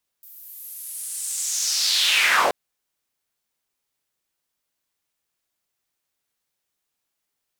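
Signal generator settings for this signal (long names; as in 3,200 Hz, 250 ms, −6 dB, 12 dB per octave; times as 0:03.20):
filter sweep on noise white, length 2.28 s bandpass, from 15,000 Hz, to 450 Hz, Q 3.3, linear, gain ramp +36 dB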